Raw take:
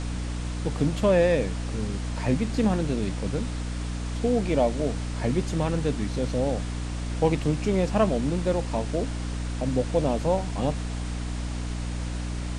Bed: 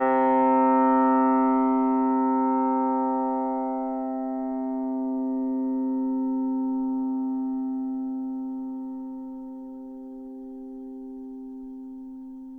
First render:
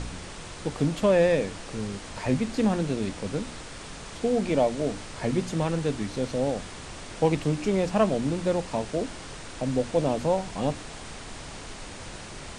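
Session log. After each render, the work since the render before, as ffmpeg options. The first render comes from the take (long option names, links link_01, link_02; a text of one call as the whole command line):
ffmpeg -i in.wav -af "bandreject=frequency=60:width_type=h:width=4,bandreject=frequency=120:width_type=h:width=4,bandreject=frequency=180:width_type=h:width=4,bandreject=frequency=240:width_type=h:width=4,bandreject=frequency=300:width_type=h:width=4" out.wav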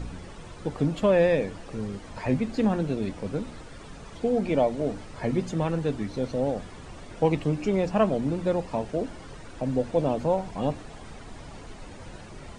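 ffmpeg -i in.wav -af "afftdn=noise_reduction=11:noise_floor=-41" out.wav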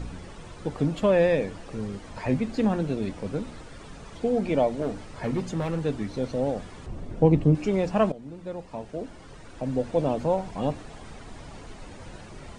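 ffmpeg -i in.wav -filter_complex "[0:a]asettb=1/sr,asplit=3[link_01][link_02][link_03];[link_01]atrim=end=4.824[link_04];[link_02]atrim=start=4.82:end=5.82,asetpts=PTS-STARTPTS,afade=type=in:duration=0.004:curve=qsin,afade=type=out:start_time=0.996:duration=0.004:curve=qsin,asoftclip=type=hard:threshold=-22dB[link_05];[link_03]atrim=start=5.816[link_06];[link_04][link_05]acrossfade=duration=0.004:curve1=hsin:curve2=qsin[link_07];[link_07][link_06]acrossfade=duration=0.004:curve1=qsin:curve2=hsin,asettb=1/sr,asplit=3[link_08][link_09][link_10];[link_08]atrim=end=6.864[link_11];[link_09]atrim=start=6.86:end=7.55,asetpts=PTS-STARTPTS,afade=type=in:duration=0.004:curve=qsin,afade=type=out:start_time=0.686:duration=0.004:curve=qsin,tiltshelf=frequency=650:gain=8.5[link_12];[link_10]atrim=start=7.546[link_13];[link_11][link_12]acrossfade=duration=0.004:curve1=hsin:curve2=qsin[link_14];[link_14][link_13]acrossfade=duration=0.004:curve1=qsin:curve2=hsin,asplit=2[link_15][link_16];[link_15]atrim=end=8.12,asetpts=PTS-STARTPTS,afade=type=out:start_time=8.116:duration=0.004:curve=hsin:silence=0.141254[link_17];[link_16]atrim=start=8.12,asetpts=PTS-STARTPTS,afade=type=in:duration=1.88:silence=0.141254[link_18];[link_17][link_18]concat=n=2:v=0:a=1" out.wav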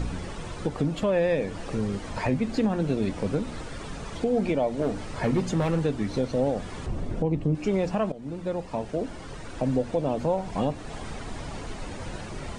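ffmpeg -i in.wav -filter_complex "[0:a]asplit=2[link_01][link_02];[link_02]acompressor=threshold=-32dB:ratio=6,volume=1dB[link_03];[link_01][link_03]amix=inputs=2:normalize=0,alimiter=limit=-15dB:level=0:latency=1:release=266" out.wav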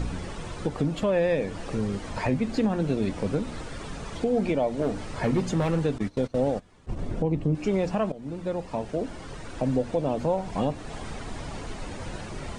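ffmpeg -i in.wav -filter_complex "[0:a]asettb=1/sr,asplit=3[link_01][link_02][link_03];[link_01]atrim=end=5.984[link_04];[link_02]atrim=start=5.98:end=6.99,asetpts=PTS-STARTPTS,afade=type=in:duration=0.004:curve=qsin,afade=type=out:start_time=1.006:duration=0.004:curve=qsin,agate=range=-20dB:threshold=-30dB:ratio=16:release=100:detection=peak[link_05];[link_03]atrim=start=6.986[link_06];[link_04][link_05]acrossfade=duration=0.004:curve1=hsin:curve2=qsin[link_07];[link_07][link_06]acrossfade=duration=0.004:curve1=qsin:curve2=hsin" out.wav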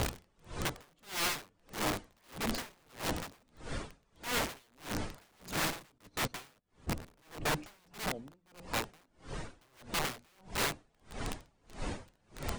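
ffmpeg -i in.wav -af "aeval=exprs='(mod(18.8*val(0)+1,2)-1)/18.8':channel_layout=same,aeval=exprs='val(0)*pow(10,-37*(0.5-0.5*cos(2*PI*1.6*n/s))/20)':channel_layout=same" out.wav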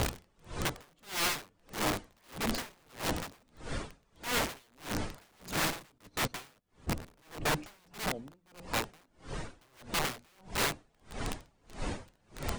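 ffmpeg -i in.wav -af "volume=2dB" out.wav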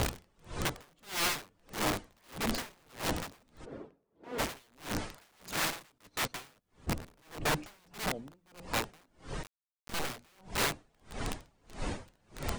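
ffmpeg -i in.wav -filter_complex "[0:a]asplit=3[link_01][link_02][link_03];[link_01]afade=type=out:start_time=3.64:duration=0.02[link_04];[link_02]bandpass=frequency=380:width_type=q:width=1.5,afade=type=in:start_time=3.64:duration=0.02,afade=type=out:start_time=4.38:duration=0.02[link_05];[link_03]afade=type=in:start_time=4.38:duration=0.02[link_06];[link_04][link_05][link_06]amix=inputs=3:normalize=0,asettb=1/sr,asplit=3[link_07][link_08][link_09];[link_07]atrim=end=4.994[link_10];[link_08]atrim=start=4.99:end=6.35,asetpts=PTS-STARTPTS,afade=type=in:duration=0.004:curve=qsin,afade=type=out:start_time=1.356:duration=0.004:curve=qsin,lowshelf=frequency=480:gain=-6.5[link_11];[link_09]atrim=start=6.346[link_12];[link_10][link_11]acrossfade=duration=0.004:curve1=hsin:curve2=qsin[link_13];[link_13][link_12]acrossfade=duration=0.004:curve1=qsin:curve2=hsin,asettb=1/sr,asplit=3[link_14][link_15][link_16];[link_14]atrim=end=9.434[link_17];[link_15]atrim=start=9.43:end=10.1,asetpts=PTS-STARTPTS,afade=type=in:duration=0.004:curve=qsin,afade=type=out:start_time=0.666:duration=0.004:curve=qsin,acrusher=bits=4:dc=4:mix=0:aa=0.000001[link_18];[link_16]atrim=start=10.096[link_19];[link_17][link_18]acrossfade=duration=0.004:curve1=hsin:curve2=qsin[link_20];[link_20][link_19]acrossfade=duration=0.004:curve1=qsin:curve2=hsin" out.wav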